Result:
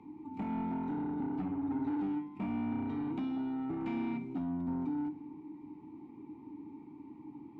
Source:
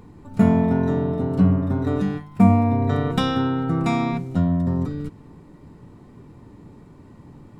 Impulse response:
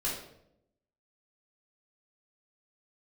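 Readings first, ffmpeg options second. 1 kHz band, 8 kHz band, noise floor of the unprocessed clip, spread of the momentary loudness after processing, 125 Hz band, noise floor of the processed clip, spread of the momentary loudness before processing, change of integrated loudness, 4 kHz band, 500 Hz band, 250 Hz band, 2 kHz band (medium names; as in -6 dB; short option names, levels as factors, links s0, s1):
-15.0 dB, no reading, -47 dBFS, 14 LU, -24.0 dB, -52 dBFS, 9 LU, -15.5 dB, under -20 dB, -20.5 dB, -13.0 dB, -17.5 dB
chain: -filter_complex "[0:a]acrossover=split=220|690|2400[s0][s1][s2][s3];[s0]acompressor=threshold=0.0631:ratio=4[s4];[s1]acompressor=threshold=0.0224:ratio=4[s5];[s2]acompressor=threshold=0.0141:ratio=4[s6];[s3]acompressor=threshold=0.00501:ratio=4[s7];[s4][s5][s6][s7]amix=inputs=4:normalize=0,asoftclip=type=hard:threshold=0.141,asplit=3[s8][s9][s10];[s8]bandpass=f=300:t=q:w=8,volume=1[s11];[s9]bandpass=f=870:t=q:w=8,volume=0.501[s12];[s10]bandpass=f=2240:t=q:w=8,volume=0.355[s13];[s11][s12][s13]amix=inputs=3:normalize=0,asoftclip=type=tanh:threshold=0.0158,asplit=2[s14][s15];[1:a]atrim=start_sample=2205,asetrate=36162,aresample=44100[s16];[s15][s16]afir=irnorm=-1:irlink=0,volume=0.15[s17];[s14][s17]amix=inputs=2:normalize=0,volume=1.68"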